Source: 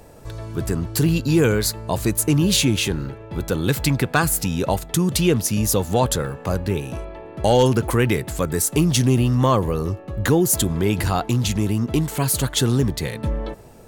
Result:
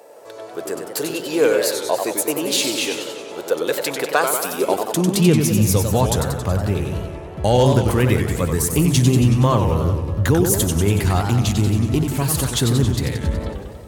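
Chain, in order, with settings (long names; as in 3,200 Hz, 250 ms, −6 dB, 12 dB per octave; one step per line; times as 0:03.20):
high-pass filter sweep 510 Hz → 73 Hz, 0:04.40–0:06.01
feedback echo with a swinging delay time 93 ms, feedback 66%, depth 201 cents, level −6 dB
level −1 dB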